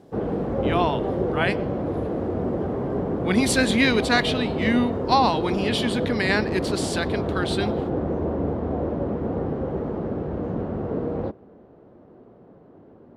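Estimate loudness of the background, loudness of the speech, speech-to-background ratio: -27.0 LUFS, -24.0 LUFS, 3.0 dB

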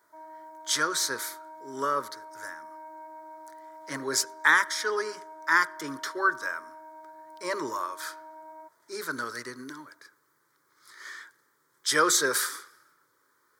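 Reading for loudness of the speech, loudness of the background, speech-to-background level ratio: -27.5 LUFS, -46.5 LUFS, 19.0 dB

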